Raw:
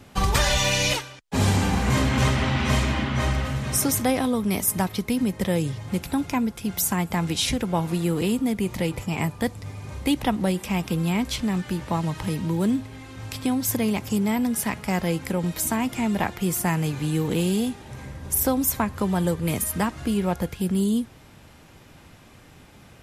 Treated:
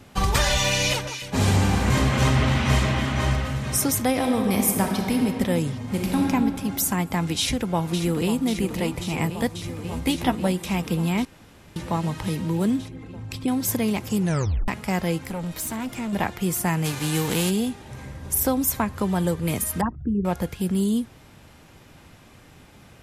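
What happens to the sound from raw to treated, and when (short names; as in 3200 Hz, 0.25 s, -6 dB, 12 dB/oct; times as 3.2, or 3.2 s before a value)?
0.78–3.36 echo with dull and thin repeats by turns 0.145 s, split 1600 Hz, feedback 71%, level -7 dB
4.09–5.25 reverb throw, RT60 2.7 s, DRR 1.5 dB
5.84–6.26 reverb throw, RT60 2.6 s, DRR -2.5 dB
7.39–8.41 echo throw 0.54 s, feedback 85%, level -10 dB
9.83–10.47 doubler 12 ms -6 dB
11.25–11.76 room tone
12.88–13.48 formant sharpening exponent 1.5
14.19 tape stop 0.49 s
15.18–16.13 tube stage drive 25 dB, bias 0.3
16.84–17.49 spectral whitening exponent 0.6
19.81–20.25 formant sharpening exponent 3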